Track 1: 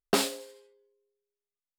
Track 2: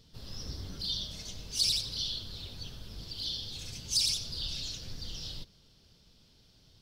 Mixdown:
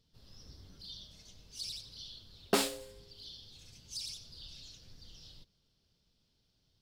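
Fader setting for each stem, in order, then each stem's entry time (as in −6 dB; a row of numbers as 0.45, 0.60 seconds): −3.5, −13.5 decibels; 2.40, 0.00 seconds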